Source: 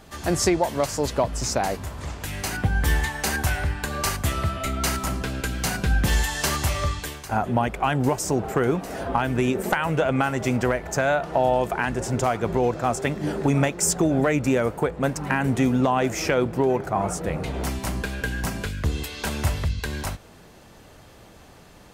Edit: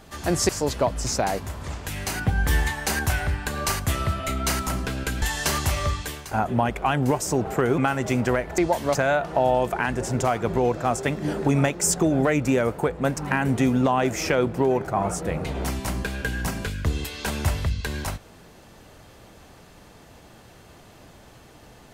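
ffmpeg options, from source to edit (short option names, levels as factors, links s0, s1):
-filter_complex "[0:a]asplit=6[s0][s1][s2][s3][s4][s5];[s0]atrim=end=0.492[s6];[s1]atrim=start=0.858:end=5.592[s7];[s2]atrim=start=6.198:end=8.762[s8];[s3]atrim=start=10.138:end=10.942[s9];[s4]atrim=start=0.488:end=0.862[s10];[s5]atrim=start=10.938[s11];[s6][s7]acrossfade=d=0.004:c1=hsin:c2=hsin[s12];[s12][s8]acrossfade=d=0.004:c1=hsin:c2=hsin[s13];[s13][s9]acrossfade=d=0.004:c1=hsin:c2=hsin[s14];[s14][s10]acrossfade=d=0.004:c1=hsin:c2=hsin[s15];[s15][s11]acrossfade=d=0.004:c1=hsin:c2=hsin"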